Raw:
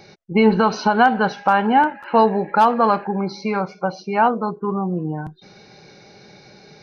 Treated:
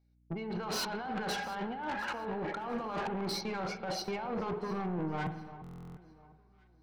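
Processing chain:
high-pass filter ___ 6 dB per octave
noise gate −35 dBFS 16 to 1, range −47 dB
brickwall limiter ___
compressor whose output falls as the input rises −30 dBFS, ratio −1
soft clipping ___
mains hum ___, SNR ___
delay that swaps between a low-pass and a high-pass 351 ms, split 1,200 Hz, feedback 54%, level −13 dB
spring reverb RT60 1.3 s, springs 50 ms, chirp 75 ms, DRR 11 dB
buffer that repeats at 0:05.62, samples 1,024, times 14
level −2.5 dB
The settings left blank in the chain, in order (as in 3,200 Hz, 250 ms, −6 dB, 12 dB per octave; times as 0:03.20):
220 Hz, −9.5 dBFS, −29.5 dBFS, 60 Hz, 33 dB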